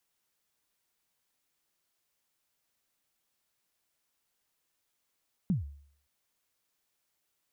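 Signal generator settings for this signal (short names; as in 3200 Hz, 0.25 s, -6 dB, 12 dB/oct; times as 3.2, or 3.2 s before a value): kick drum length 0.57 s, from 210 Hz, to 71 Hz, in 0.138 s, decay 0.58 s, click off, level -22 dB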